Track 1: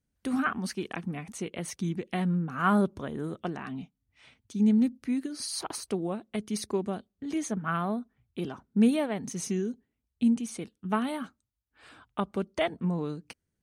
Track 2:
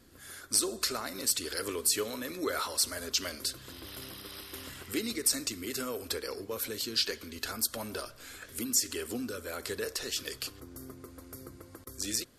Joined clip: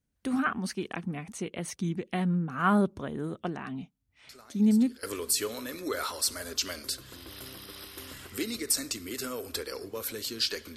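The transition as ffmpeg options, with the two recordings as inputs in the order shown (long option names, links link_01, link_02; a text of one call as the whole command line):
ffmpeg -i cue0.wav -i cue1.wav -filter_complex "[1:a]asplit=2[link_01][link_02];[0:a]apad=whole_dur=10.76,atrim=end=10.76,atrim=end=5.032[link_03];[link_02]atrim=start=1.588:end=7.32[link_04];[link_01]atrim=start=0.85:end=1.59,asetpts=PTS-STARTPTS,volume=-17.5dB,afade=type=in:duration=0.004:curve=hsin,afade=type=out:start_time=0.736:duration=0.004:curve=hsin,adelay=189189S[link_05];[link_03][link_04]acrossfade=duration=0.004:curve1=hsin:curve2=hsin[link_06];[link_06][link_05]amix=inputs=2:normalize=0" out.wav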